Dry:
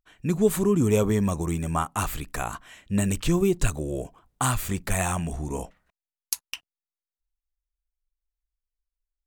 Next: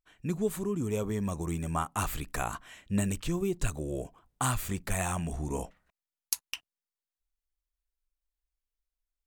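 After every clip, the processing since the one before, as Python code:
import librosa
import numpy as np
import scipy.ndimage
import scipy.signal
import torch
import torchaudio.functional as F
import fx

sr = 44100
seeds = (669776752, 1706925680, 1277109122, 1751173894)

y = fx.rider(x, sr, range_db=4, speed_s=0.5)
y = F.gain(torch.from_numpy(y), -6.5).numpy()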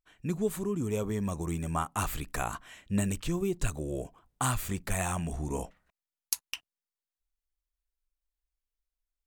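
y = x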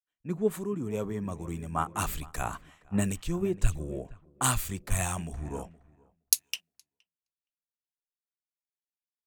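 y = fx.echo_filtered(x, sr, ms=468, feedback_pct=32, hz=2800.0, wet_db=-13.5)
y = fx.band_widen(y, sr, depth_pct=100)
y = F.gain(torch.from_numpy(y), -1.0).numpy()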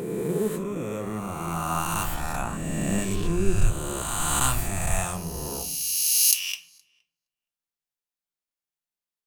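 y = fx.spec_swells(x, sr, rise_s=2.57)
y = fx.room_shoebox(y, sr, seeds[0], volume_m3=540.0, walls='furnished', distance_m=0.84)
y = F.gain(torch.from_numpy(y), -2.0).numpy()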